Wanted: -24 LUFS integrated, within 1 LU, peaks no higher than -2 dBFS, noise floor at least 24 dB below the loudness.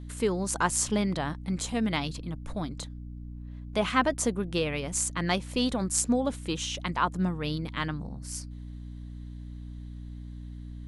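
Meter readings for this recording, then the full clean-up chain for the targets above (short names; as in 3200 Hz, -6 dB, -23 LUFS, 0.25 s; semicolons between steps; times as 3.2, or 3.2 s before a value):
hum 60 Hz; harmonics up to 300 Hz; hum level -38 dBFS; loudness -29.5 LUFS; peak -8.5 dBFS; loudness target -24.0 LUFS
-> notches 60/120/180/240/300 Hz; gain +5.5 dB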